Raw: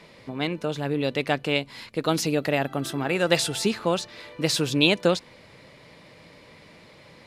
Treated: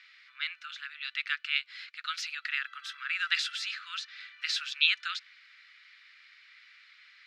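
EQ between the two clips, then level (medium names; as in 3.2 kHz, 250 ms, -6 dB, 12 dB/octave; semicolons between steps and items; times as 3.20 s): steep high-pass 1.3 kHz 72 dB/octave; distance through air 210 m; treble shelf 4.6 kHz +5.5 dB; 0.0 dB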